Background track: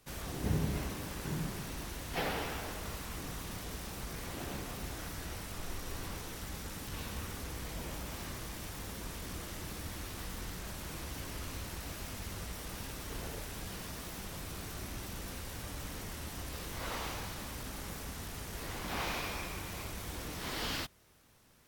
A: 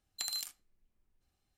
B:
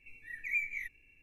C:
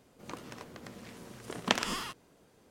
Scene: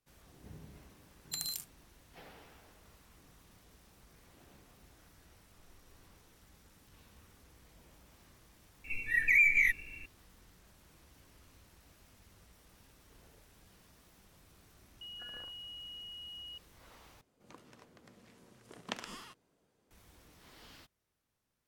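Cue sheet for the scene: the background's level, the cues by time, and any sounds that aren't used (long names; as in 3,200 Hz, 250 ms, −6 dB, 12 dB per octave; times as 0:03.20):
background track −19.5 dB
0:01.13: mix in A −4 dB + high-shelf EQ 9,000 Hz +10.5 dB
0:08.84: mix in B −17 dB + boost into a limiter +32 dB
0:15.01: mix in A −8 dB + switching amplifier with a slow clock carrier 2,900 Hz
0:17.21: overwrite with C −12.5 dB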